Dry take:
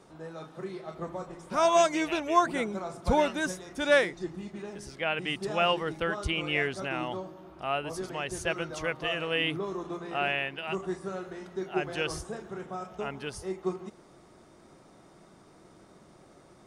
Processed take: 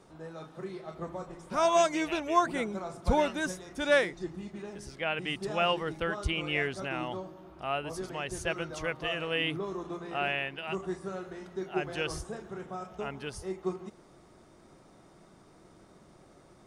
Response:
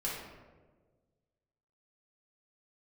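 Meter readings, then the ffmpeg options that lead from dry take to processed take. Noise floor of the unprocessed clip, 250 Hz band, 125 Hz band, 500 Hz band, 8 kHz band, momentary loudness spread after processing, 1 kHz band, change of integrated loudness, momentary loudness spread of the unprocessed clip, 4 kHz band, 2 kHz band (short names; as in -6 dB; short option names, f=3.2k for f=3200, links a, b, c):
-56 dBFS, -1.5 dB, -0.5 dB, -2.0 dB, -2.0 dB, 15 LU, -2.0 dB, -2.0 dB, 15 LU, -2.0 dB, -2.0 dB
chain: -af "lowshelf=f=78:g=6,volume=-2dB"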